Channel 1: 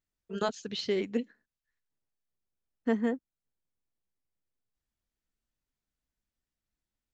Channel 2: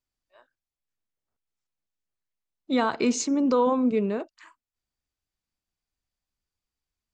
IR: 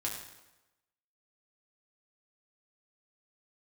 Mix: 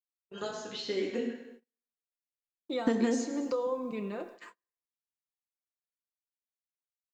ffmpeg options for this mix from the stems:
-filter_complex "[0:a]dynaudnorm=f=270:g=11:m=13.5dB,acompressor=threshold=-17dB:ratio=6,volume=1.5dB,asplit=2[a][b];[b]volume=-4.5dB[c];[1:a]aecho=1:1:5.8:0.53,acompressor=threshold=-35dB:ratio=2,volume=-3.5dB,asplit=3[d][e][f];[e]volume=-4dB[g];[f]apad=whole_len=314800[h];[a][h]sidechaingate=range=-33dB:threshold=-52dB:ratio=16:detection=peak[i];[2:a]atrim=start_sample=2205[j];[c][g]amix=inputs=2:normalize=0[k];[k][j]afir=irnorm=-1:irlink=0[l];[i][d][l]amix=inputs=3:normalize=0,agate=range=-35dB:threshold=-48dB:ratio=16:detection=peak,lowshelf=f=220:g=-9.5,acrossover=split=640|4300[m][n][o];[m]acompressor=threshold=-25dB:ratio=4[p];[n]acompressor=threshold=-42dB:ratio=4[q];[o]acompressor=threshold=-43dB:ratio=4[r];[p][q][r]amix=inputs=3:normalize=0"

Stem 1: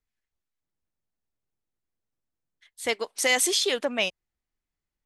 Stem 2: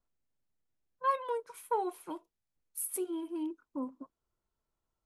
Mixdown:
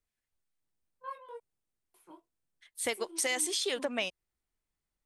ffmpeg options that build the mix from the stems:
-filter_complex "[0:a]equalizer=f=8.8k:w=7.1:g=8.5,acompressor=threshold=-27dB:ratio=6,volume=-1.5dB[a];[1:a]flanger=delay=18.5:depth=3.3:speed=2.1,volume=-9dB,asplit=3[b][c][d];[b]atrim=end=1.4,asetpts=PTS-STARTPTS,afade=t=out:st=1.396:d=0.004:c=hsin[e];[c]atrim=start=1.4:end=1.94,asetpts=PTS-STARTPTS,volume=0[f];[d]atrim=start=1.94,asetpts=PTS-STARTPTS,afade=t=in:d=0.004:c=hsin[g];[e][f][g]concat=n=3:v=0:a=1[h];[a][h]amix=inputs=2:normalize=0"

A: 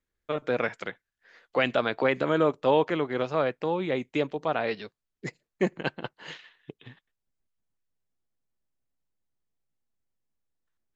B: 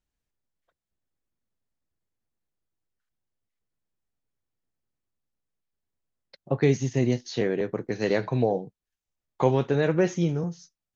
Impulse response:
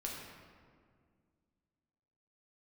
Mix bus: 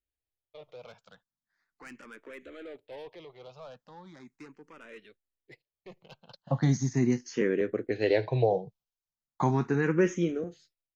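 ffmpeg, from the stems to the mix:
-filter_complex "[0:a]equalizer=f=4.3k:t=o:w=2.3:g=4,asoftclip=type=tanh:threshold=-24dB,adelay=250,volume=-14dB[a];[1:a]volume=0.5dB,asplit=2[b][c];[c]apad=whole_len=494228[d];[a][d]sidechaincompress=threshold=-27dB:ratio=8:attack=6.6:release=479[e];[e][b]amix=inputs=2:normalize=0,agate=range=-8dB:threshold=-57dB:ratio=16:detection=peak,asplit=2[f][g];[g]afreqshift=0.38[h];[f][h]amix=inputs=2:normalize=1"

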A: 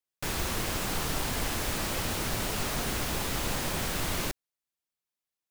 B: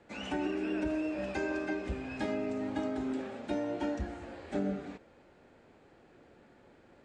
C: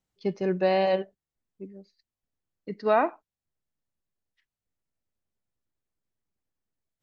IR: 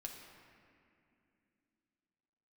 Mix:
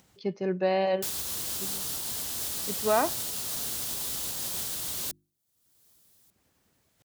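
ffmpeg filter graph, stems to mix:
-filter_complex "[0:a]bandreject=f=50:t=h:w=6,bandreject=f=100:t=h:w=6,bandreject=f=150:t=h:w=6,bandreject=f=200:t=h:w=6,bandreject=f=250:t=h:w=6,bandreject=f=300:t=h:w=6,bandreject=f=350:t=h:w=6,alimiter=level_in=0.5dB:limit=-24dB:level=0:latency=1:release=309,volume=-0.5dB,aexciter=amount=4.3:drive=4.3:freq=3.2k,adelay=800,volume=-7.5dB[a];[2:a]volume=-2.5dB[b];[a][b]amix=inputs=2:normalize=0,acompressor=mode=upward:threshold=-43dB:ratio=2.5,highpass=63"

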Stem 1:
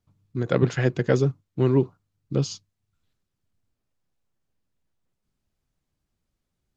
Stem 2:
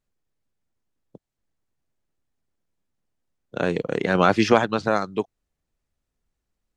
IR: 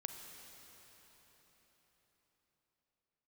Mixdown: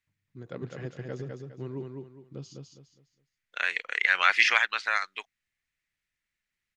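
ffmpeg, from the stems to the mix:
-filter_complex "[0:a]volume=-17.5dB,asplit=2[a][b];[b]volume=-4dB[c];[1:a]highpass=f=2k:t=q:w=3.4,highshelf=f=5.5k:g=-5.5,volume=0.5dB[d];[c]aecho=0:1:205|410|615|820:1|0.31|0.0961|0.0298[e];[a][d][e]amix=inputs=3:normalize=0"

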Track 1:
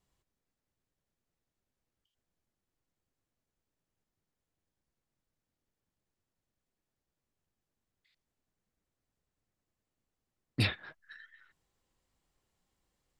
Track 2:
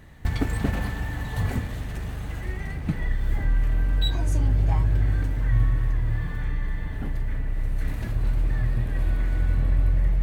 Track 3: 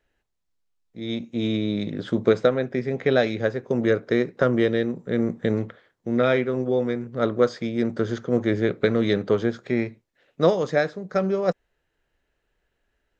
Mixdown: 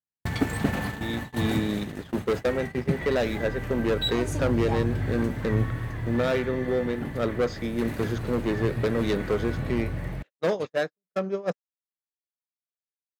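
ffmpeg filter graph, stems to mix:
-filter_complex "[0:a]volume=-4dB[a];[1:a]volume=2.5dB[b];[2:a]asoftclip=type=hard:threshold=-17dB,volume=-2.5dB,asplit=2[c][d];[d]apad=whole_len=581830[e];[a][e]sidechaincompress=threshold=-35dB:ratio=5:attack=11:release=123[f];[f][b][c]amix=inputs=3:normalize=0,agate=range=-56dB:threshold=-25dB:ratio=16:detection=peak,highpass=130"

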